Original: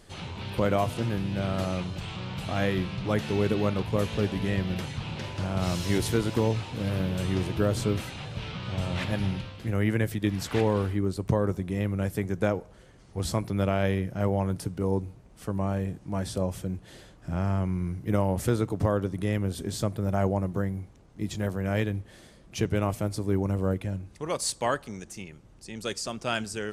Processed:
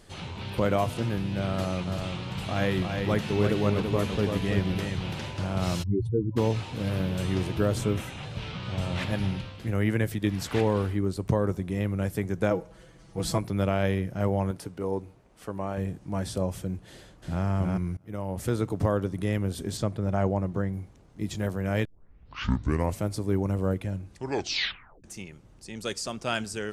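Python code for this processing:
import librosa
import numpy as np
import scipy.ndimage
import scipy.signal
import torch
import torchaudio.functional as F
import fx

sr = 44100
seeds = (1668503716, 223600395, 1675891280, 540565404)

y = fx.echo_single(x, sr, ms=335, db=-5.0, at=(1.86, 5.3), fade=0.02)
y = fx.spec_expand(y, sr, power=3.4, at=(5.82, 6.36), fade=0.02)
y = fx.peak_eq(y, sr, hz=4500.0, db=-8.5, octaves=0.35, at=(7.78, 8.23))
y = fx.comb(y, sr, ms=6.1, depth=0.75, at=(12.5, 13.38))
y = fx.bass_treble(y, sr, bass_db=-9, treble_db=-4, at=(14.51, 15.78))
y = fx.echo_throw(y, sr, start_s=16.9, length_s=0.55, ms=320, feedback_pct=15, wet_db=-2.0)
y = fx.air_absorb(y, sr, metres=54.0, at=(19.77, 20.73))
y = fx.edit(y, sr, fx.fade_in_from(start_s=17.97, length_s=0.72, floor_db=-24.0),
    fx.tape_start(start_s=21.85, length_s=1.18),
    fx.tape_stop(start_s=24.12, length_s=0.92), tone=tone)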